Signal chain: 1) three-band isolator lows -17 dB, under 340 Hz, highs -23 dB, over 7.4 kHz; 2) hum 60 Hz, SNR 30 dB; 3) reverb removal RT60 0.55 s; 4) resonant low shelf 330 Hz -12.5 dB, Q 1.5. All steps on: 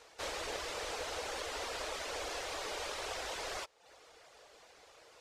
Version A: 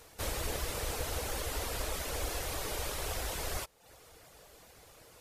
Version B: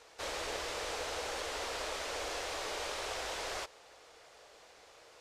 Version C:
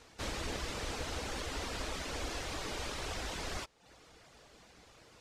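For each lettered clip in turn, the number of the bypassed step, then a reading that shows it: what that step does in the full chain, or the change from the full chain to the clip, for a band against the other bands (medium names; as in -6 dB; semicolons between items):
1, 125 Hz band +15.5 dB; 3, loudness change +1.5 LU; 4, 125 Hz band +13.5 dB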